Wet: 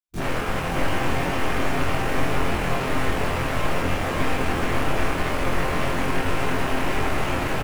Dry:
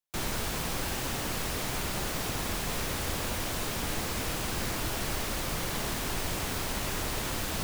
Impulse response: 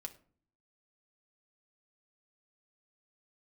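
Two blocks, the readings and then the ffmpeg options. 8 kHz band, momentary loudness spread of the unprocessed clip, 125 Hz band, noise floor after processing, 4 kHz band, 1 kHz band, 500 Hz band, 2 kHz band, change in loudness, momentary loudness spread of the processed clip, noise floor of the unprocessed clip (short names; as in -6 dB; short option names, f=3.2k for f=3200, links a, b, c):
-4.5 dB, 0 LU, +9.0 dB, -26 dBFS, +1.5 dB, +11.0 dB, +11.0 dB, +9.5 dB, +7.0 dB, 1 LU, -34 dBFS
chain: -filter_complex "[0:a]afwtdn=0.0141,bass=f=250:g=-4,treble=f=4k:g=0,aeval=exprs='(tanh(50.1*val(0)+0.45)-tanh(0.45))/50.1':c=same,aecho=1:1:558:0.562,asplit=2[a][b];[1:a]atrim=start_sample=2205,asetrate=23373,aresample=44100,adelay=23[c];[b][c]afir=irnorm=-1:irlink=0,volume=4.5dB[d];[a][d]amix=inputs=2:normalize=0,volume=8dB"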